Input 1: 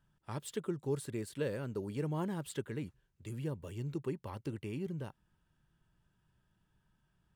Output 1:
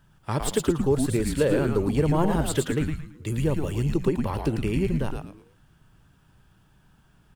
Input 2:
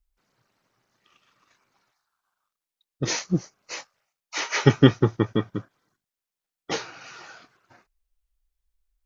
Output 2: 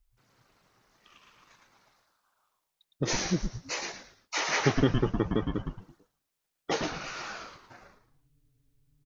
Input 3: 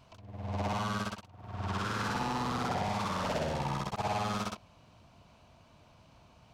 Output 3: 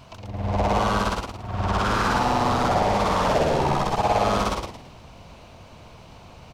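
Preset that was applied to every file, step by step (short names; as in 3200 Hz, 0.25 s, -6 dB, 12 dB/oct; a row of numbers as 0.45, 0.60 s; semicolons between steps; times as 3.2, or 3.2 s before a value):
dynamic EQ 660 Hz, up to +5 dB, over -42 dBFS, Q 0.79; compressor 2:1, threshold -36 dBFS; on a send: frequency-shifting echo 0.111 s, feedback 33%, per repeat -150 Hz, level -3.5 dB; on the sum: normalise peaks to -9 dBFS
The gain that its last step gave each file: +14.5, +3.5, +12.5 dB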